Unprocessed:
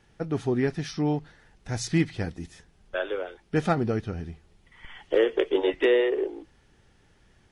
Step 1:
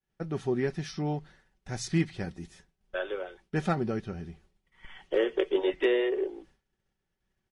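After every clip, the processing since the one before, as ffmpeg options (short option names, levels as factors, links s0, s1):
-af "agate=range=0.0224:threshold=0.00398:ratio=3:detection=peak,aecho=1:1:5.3:0.38,volume=0.596"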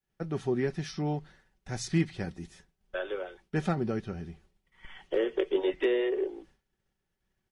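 -filter_complex "[0:a]acrossover=split=430[s0][s1];[s1]acompressor=threshold=0.0224:ratio=2[s2];[s0][s2]amix=inputs=2:normalize=0"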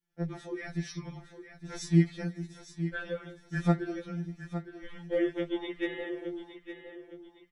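-filter_complex "[0:a]asplit=2[s0][s1];[s1]aecho=0:1:862|1724|2586|3448:0.282|0.0986|0.0345|0.0121[s2];[s0][s2]amix=inputs=2:normalize=0,afftfilt=real='re*2.83*eq(mod(b,8),0)':imag='im*2.83*eq(mod(b,8),0)':win_size=2048:overlap=0.75"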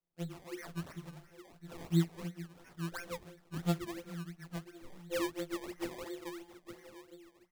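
-af "acrusher=samples=22:mix=1:aa=0.000001:lfo=1:lforange=22:lforate=2.9,volume=0.473"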